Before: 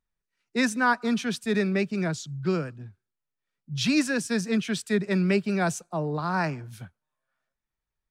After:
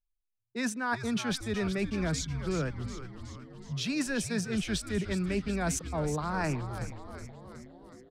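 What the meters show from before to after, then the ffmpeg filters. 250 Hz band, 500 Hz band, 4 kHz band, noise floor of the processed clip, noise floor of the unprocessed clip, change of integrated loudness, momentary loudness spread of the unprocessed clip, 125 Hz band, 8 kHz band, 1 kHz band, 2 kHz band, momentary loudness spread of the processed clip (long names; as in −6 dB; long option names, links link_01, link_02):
−6.0 dB, −6.0 dB, −4.0 dB, −83 dBFS, below −85 dBFS, −6.0 dB, 10 LU, −2.5 dB, −0.5 dB, −6.5 dB, −7.0 dB, 15 LU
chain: -filter_complex "[0:a]anlmdn=0.0398,areverse,acompressor=threshold=-31dB:ratio=12,areverse,asplit=8[link_01][link_02][link_03][link_04][link_05][link_06][link_07][link_08];[link_02]adelay=370,afreqshift=-130,volume=-10dB[link_09];[link_03]adelay=740,afreqshift=-260,volume=-14.3dB[link_10];[link_04]adelay=1110,afreqshift=-390,volume=-18.6dB[link_11];[link_05]adelay=1480,afreqshift=-520,volume=-22.9dB[link_12];[link_06]adelay=1850,afreqshift=-650,volume=-27.2dB[link_13];[link_07]adelay=2220,afreqshift=-780,volume=-31.5dB[link_14];[link_08]adelay=2590,afreqshift=-910,volume=-35.8dB[link_15];[link_01][link_09][link_10][link_11][link_12][link_13][link_14][link_15]amix=inputs=8:normalize=0,volume=3dB"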